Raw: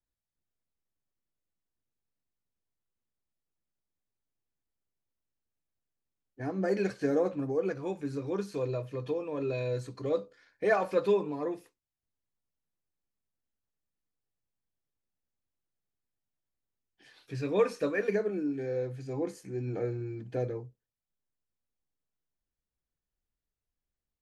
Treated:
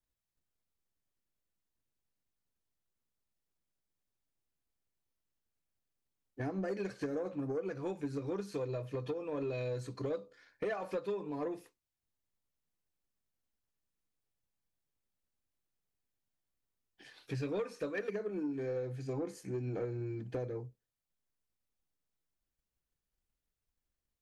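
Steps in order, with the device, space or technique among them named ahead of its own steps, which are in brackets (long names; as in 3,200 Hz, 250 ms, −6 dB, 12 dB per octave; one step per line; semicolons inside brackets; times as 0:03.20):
drum-bus smash (transient designer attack +5 dB, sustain 0 dB; downward compressor 6 to 1, threshold −32 dBFS, peak gain reduction 14 dB; soft clipping −28.5 dBFS, distortion −18 dB)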